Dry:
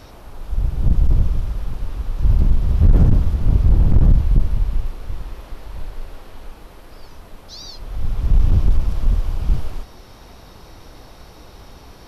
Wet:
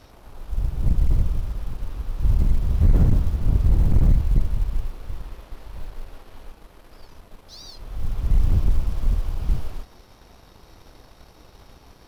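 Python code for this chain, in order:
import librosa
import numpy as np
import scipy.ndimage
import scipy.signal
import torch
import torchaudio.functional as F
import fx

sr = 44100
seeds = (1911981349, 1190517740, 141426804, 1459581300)

y = fx.law_mismatch(x, sr, coded='A')
y = y * librosa.db_to_amplitude(-4.0)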